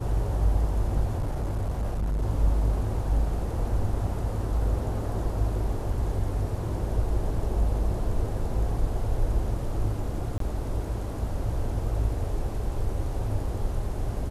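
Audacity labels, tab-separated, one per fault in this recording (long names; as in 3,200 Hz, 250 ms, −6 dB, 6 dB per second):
1.170000	2.230000	clipping −24 dBFS
10.380000	10.400000	drop-out 23 ms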